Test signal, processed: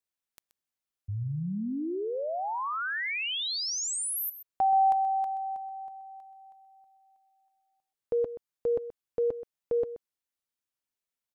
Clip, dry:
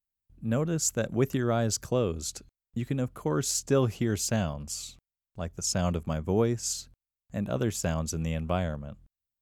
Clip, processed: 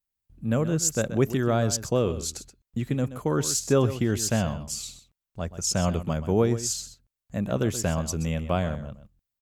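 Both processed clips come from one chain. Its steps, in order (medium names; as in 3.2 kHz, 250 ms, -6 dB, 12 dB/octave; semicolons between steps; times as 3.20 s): delay 128 ms -13 dB; trim +3 dB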